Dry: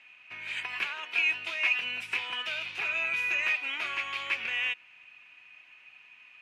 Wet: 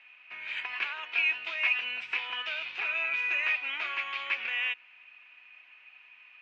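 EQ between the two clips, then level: HPF 680 Hz 6 dB/oct; air absorption 190 m; +2.5 dB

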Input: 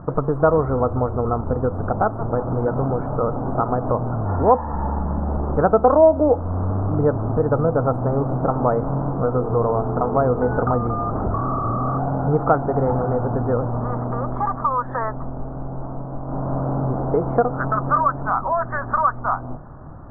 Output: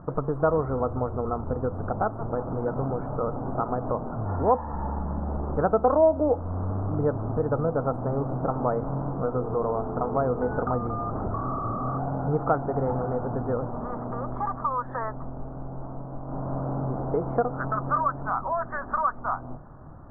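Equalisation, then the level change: notches 60/120 Hz; -6.5 dB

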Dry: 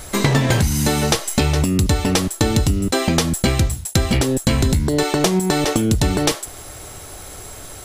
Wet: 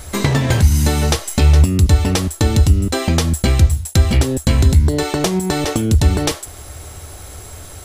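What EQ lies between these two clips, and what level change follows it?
bell 76 Hz +12.5 dB 0.66 oct; -1.0 dB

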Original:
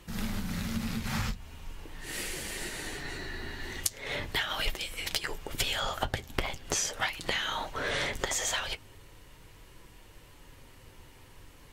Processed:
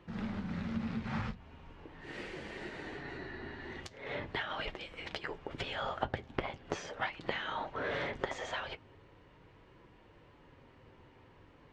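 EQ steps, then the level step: HPF 170 Hz 6 dB/oct; tape spacing loss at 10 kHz 37 dB; +1.0 dB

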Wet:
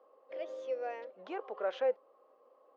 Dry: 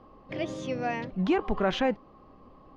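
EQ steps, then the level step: ladder high-pass 470 Hz, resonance 70%; air absorption 57 m; bell 1400 Hz +4.5 dB 0.37 oct; -3.0 dB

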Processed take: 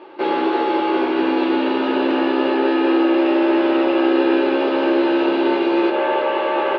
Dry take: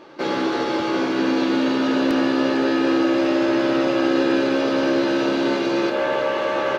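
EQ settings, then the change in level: air absorption 50 m; speaker cabinet 280–3900 Hz, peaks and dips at 370 Hz +9 dB, 860 Hz +8 dB, 2700 Hz +5 dB; 0.0 dB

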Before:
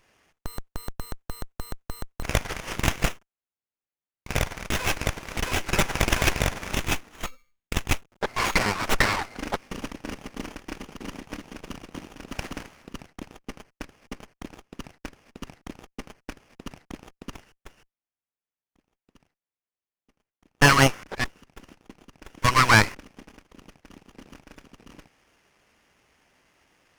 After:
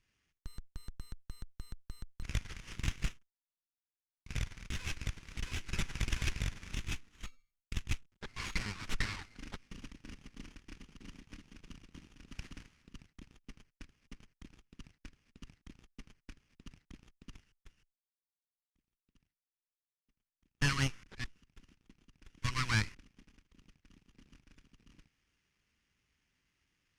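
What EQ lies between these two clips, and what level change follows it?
air absorption 51 m; passive tone stack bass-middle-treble 6-0-2; +4.0 dB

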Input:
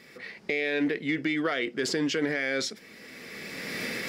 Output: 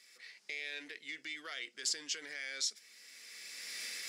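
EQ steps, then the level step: band-pass 7600 Hz, Q 1.2; +1.5 dB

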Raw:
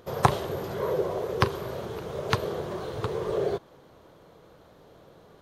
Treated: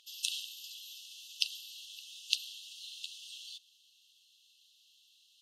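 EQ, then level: brick-wall FIR high-pass 2600 Hz; air absorption 51 m; tilt +2.5 dB/oct; +1.0 dB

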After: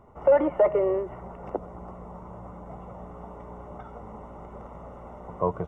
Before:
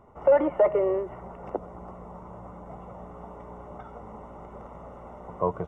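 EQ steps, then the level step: low shelf 180 Hz +3 dB; 0.0 dB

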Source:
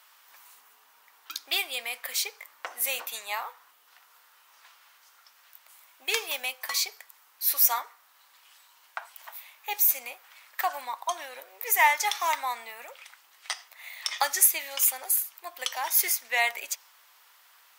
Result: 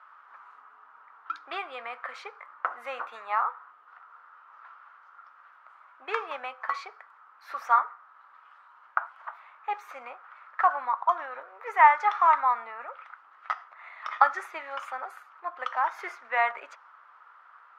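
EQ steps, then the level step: synth low-pass 1300 Hz, resonance Q 5.2; 0.0 dB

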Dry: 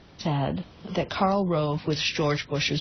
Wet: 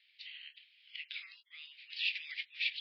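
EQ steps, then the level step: steep high-pass 2200 Hz 48 dB/oct; elliptic low-pass 4800 Hz, stop band 50 dB; air absorption 360 m; +1.5 dB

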